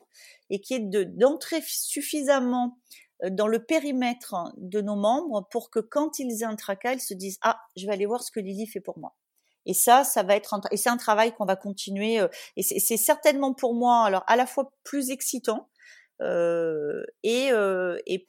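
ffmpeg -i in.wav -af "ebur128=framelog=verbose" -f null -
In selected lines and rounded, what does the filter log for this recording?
Integrated loudness:
  I:         -25.5 LUFS
  Threshold: -35.8 LUFS
Loudness range:
  LRA:         5.5 LU
  Threshold: -45.7 LUFS
  LRA low:   -28.9 LUFS
  LRA high:  -23.5 LUFS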